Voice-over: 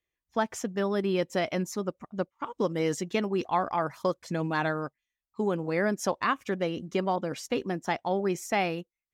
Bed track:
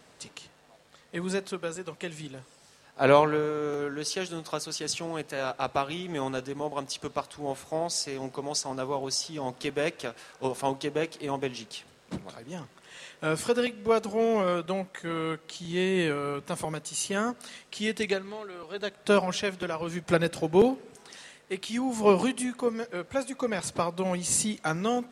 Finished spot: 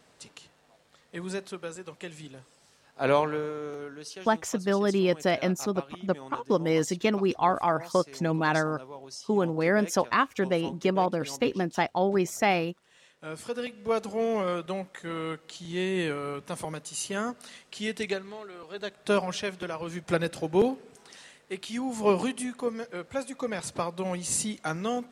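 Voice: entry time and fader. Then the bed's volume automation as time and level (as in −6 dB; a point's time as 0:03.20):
3.90 s, +3.0 dB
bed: 0:03.46 −4 dB
0:04.34 −12.5 dB
0:13.16 −12.5 dB
0:13.98 −2.5 dB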